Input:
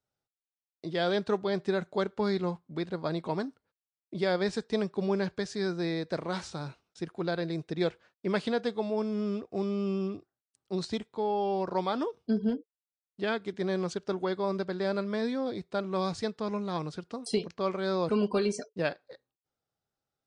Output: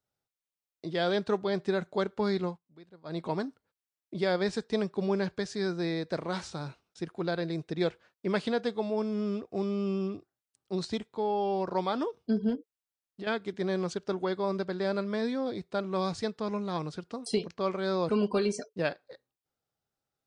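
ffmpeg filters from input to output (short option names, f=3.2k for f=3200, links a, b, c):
-filter_complex "[0:a]asettb=1/sr,asplit=3[a][b][c];[a]atrim=end=12.554[d];[b]atrim=start=12.55:end=13.27,asetpts=PTS-STARTPTS,afade=t=in:d=0.004:c=qsin,afade=t=out:st=0.716:d=0.004:c=qsin,acompressor=threshold=-36dB:ratio=6:attack=3.2:release=140:knee=1:detection=peak[e];[c]atrim=start=13.266[f];[d][e]acrossfade=d=0.004:c1=hsin:c2=qsin[g];[g][f]acrossfade=d=0.004:c1=qsin:c2=hsin,asplit=3[h][i][j];[h]atrim=end=2.59,asetpts=PTS-STARTPTS,afade=t=out:st=2.44:d=0.15:silence=0.105925[k];[i]atrim=start=2.59:end=3.04,asetpts=PTS-STARTPTS,volume=-19.5dB[l];[j]atrim=start=3.04,asetpts=PTS-STARTPTS,afade=t=in:d=0.15:silence=0.105925[m];[k][l][m]concat=n=3:v=0:a=1"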